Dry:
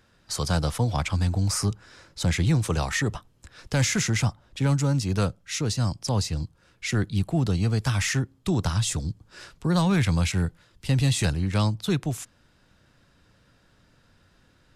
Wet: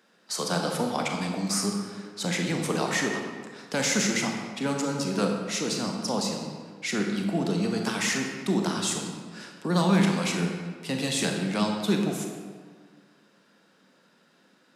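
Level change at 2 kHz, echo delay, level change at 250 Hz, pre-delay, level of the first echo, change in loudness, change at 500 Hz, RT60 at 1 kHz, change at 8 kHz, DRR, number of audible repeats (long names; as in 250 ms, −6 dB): +1.0 dB, no echo audible, +1.0 dB, 27 ms, no echo audible, −2.0 dB, +3.0 dB, 1.7 s, +0.5 dB, 1.5 dB, no echo audible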